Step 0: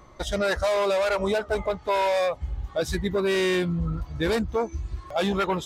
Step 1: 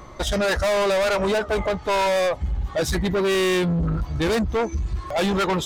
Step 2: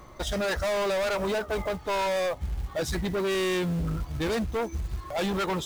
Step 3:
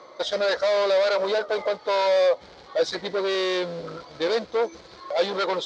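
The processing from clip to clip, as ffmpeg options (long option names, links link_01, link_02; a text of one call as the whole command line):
ffmpeg -i in.wav -af "asoftclip=type=tanh:threshold=-27.5dB,volume=9dB" out.wav
ffmpeg -i in.wav -af "acrusher=bits=5:mode=log:mix=0:aa=0.000001,volume=-6.5dB" out.wav
ffmpeg -i in.wav -af "highpass=490,equalizer=frequency=510:width_type=q:width=4:gain=8,equalizer=frequency=810:width_type=q:width=4:gain=-4,equalizer=frequency=1200:width_type=q:width=4:gain=-3,equalizer=frequency=1800:width_type=q:width=4:gain=-4,equalizer=frequency=2700:width_type=q:width=4:gain=-8,equalizer=frequency=4300:width_type=q:width=4:gain=5,lowpass=frequency=5100:width=0.5412,lowpass=frequency=5100:width=1.3066,volume=6dB" out.wav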